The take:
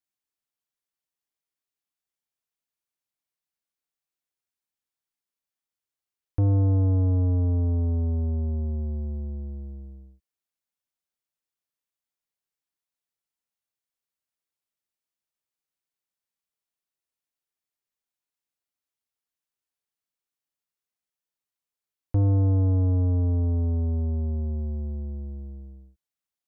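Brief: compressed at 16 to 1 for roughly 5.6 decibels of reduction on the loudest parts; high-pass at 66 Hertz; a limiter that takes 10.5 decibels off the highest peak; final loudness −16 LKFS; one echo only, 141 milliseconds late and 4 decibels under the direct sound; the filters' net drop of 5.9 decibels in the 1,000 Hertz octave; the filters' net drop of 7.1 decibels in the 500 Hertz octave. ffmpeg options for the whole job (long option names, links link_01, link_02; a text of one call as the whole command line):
ffmpeg -i in.wav -af "highpass=66,equalizer=frequency=500:width_type=o:gain=-7.5,equalizer=frequency=1000:width_type=o:gain=-4.5,acompressor=threshold=-24dB:ratio=16,alimiter=level_in=4dB:limit=-24dB:level=0:latency=1,volume=-4dB,aecho=1:1:141:0.631,volume=18.5dB" out.wav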